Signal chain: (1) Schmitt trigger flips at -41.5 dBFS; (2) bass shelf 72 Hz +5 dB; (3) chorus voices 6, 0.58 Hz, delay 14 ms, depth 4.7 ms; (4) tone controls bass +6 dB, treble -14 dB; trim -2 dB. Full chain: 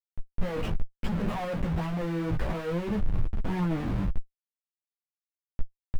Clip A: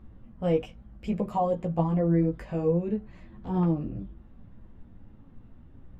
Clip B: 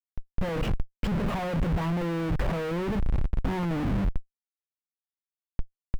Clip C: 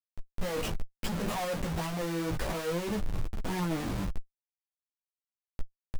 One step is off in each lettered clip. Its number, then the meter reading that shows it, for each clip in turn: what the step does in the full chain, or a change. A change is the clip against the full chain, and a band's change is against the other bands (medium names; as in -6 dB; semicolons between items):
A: 1, crest factor change +2.5 dB; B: 3, crest factor change -2.0 dB; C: 4, momentary loudness spread change -2 LU